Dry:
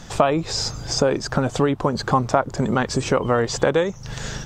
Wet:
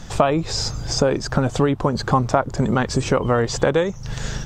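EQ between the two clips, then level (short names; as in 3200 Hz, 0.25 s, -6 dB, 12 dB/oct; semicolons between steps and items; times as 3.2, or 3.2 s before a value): low shelf 120 Hz +7 dB; 0.0 dB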